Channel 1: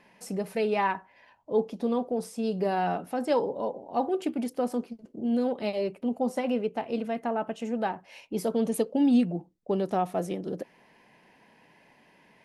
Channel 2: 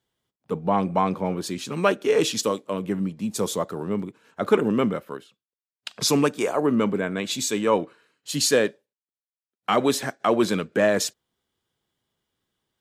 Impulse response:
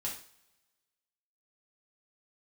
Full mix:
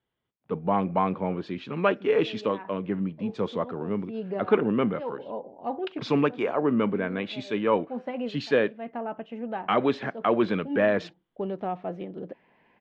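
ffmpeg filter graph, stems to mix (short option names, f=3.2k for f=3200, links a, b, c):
-filter_complex "[0:a]acontrast=58,adelay=1700,volume=-10dB[a];[1:a]volume=-2.5dB,asplit=2[b][c];[c]apad=whole_len=623978[d];[a][d]sidechaincompress=threshold=-38dB:ratio=8:attack=11:release=155[e];[e][b]amix=inputs=2:normalize=0,lowpass=f=3.1k:w=0.5412,lowpass=f=3.1k:w=1.3066"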